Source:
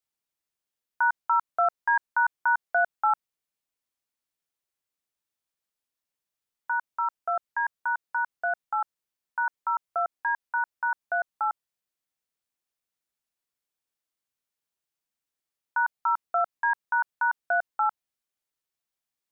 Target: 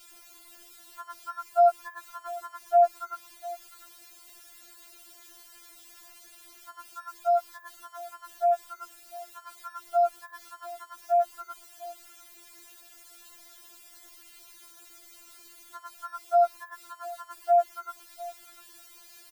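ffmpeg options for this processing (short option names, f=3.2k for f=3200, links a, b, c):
-filter_complex "[0:a]aeval=exprs='val(0)+0.5*0.0075*sgn(val(0))':c=same,asplit=2[a][b];[b]adelay=699.7,volume=-18dB,highshelf=f=4k:g=-15.7[c];[a][c]amix=inputs=2:normalize=0,afftfilt=real='re*4*eq(mod(b,16),0)':imag='im*4*eq(mod(b,16),0)':win_size=2048:overlap=0.75"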